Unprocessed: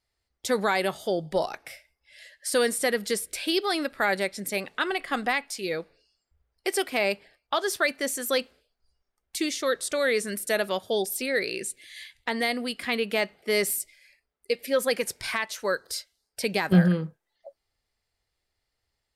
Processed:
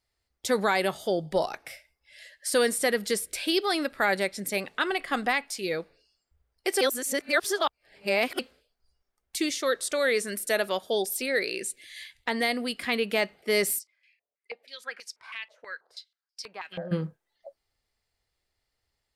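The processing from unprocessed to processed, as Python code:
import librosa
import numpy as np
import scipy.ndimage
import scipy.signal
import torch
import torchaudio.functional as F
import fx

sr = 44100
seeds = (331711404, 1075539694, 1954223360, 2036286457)

y = fx.peak_eq(x, sr, hz=100.0, db=-14.5, octaves=1.1, at=(9.5, 11.78))
y = fx.filter_held_bandpass(y, sr, hz=6.2, low_hz=600.0, high_hz=5200.0, at=(13.78, 16.91), fade=0.02)
y = fx.edit(y, sr, fx.reverse_span(start_s=6.81, length_s=1.58), tone=tone)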